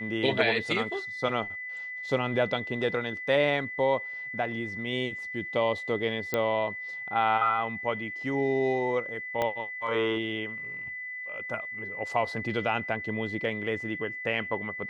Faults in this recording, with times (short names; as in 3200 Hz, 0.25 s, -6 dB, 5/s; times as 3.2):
tone 2000 Hz -35 dBFS
6.34 pop -13 dBFS
9.42 pop -15 dBFS